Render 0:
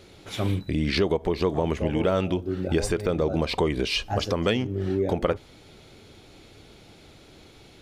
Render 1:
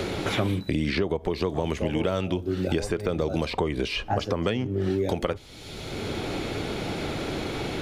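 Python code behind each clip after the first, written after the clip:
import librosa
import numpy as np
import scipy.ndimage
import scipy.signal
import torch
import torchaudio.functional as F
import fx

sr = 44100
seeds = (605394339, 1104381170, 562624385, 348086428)

y = fx.band_squash(x, sr, depth_pct=100)
y = F.gain(torch.from_numpy(y), -2.0).numpy()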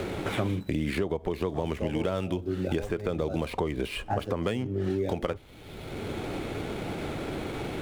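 y = scipy.ndimage.median_filter(x, 9, mode='constant')
y = F.gain(torch.from_numpy(y), -3.0).numpy()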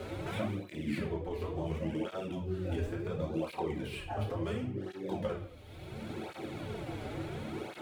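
y = fx.room_shoebox(x, sr, seeds[0], volume_m3=110.0, walls='mixed', distance_m=0.97)
y = fx.flanger_cancel(y, sr, hz=0.71, depth_ms=6.1)
y = F.gain(torch.from_numpy(y), -8.0).numpy()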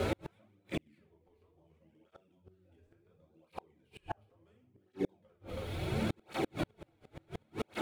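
y = x + 10.0 ** (-18.5 / 20.0) * np.pad(x, (int(324 * sr / 1000.0), 0))[:len(x)]
y = fx.gate_flip(y, sr, shuts_db=-30.0, range_db=-41)
y = F.gain(torch.from_numpy(y), 9.5).numpy()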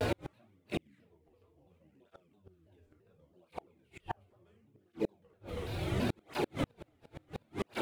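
y = fx.vibrato_shape(x, sr, shape='saw_down', rate_hz=3.0, depth_cents=250.0)
y = F.gain(torch.from_numpy(y), 1.0).numpy()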